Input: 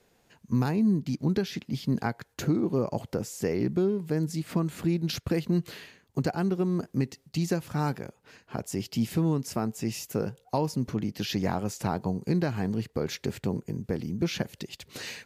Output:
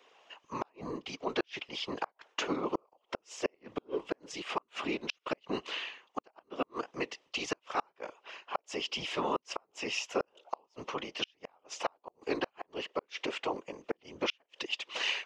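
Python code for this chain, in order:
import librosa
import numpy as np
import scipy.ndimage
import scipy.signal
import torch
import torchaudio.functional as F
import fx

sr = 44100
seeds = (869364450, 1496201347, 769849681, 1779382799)

y = fx.cabinet(x, sr, low_hz=470.0, low_slope=24, high_hz=5300.0, hz=(490.0, 1100.0, 1600.0, 2900.0, 4400.0), db=(-3, 7, -5, 8, -9))
y = fx.whisperise(y, sr, seeds[0])
y = fx.gate_flip(y, sr, shuts_db=-25.0, range_db=-40)
y = y * librosa.db_to_amplitude(6.0)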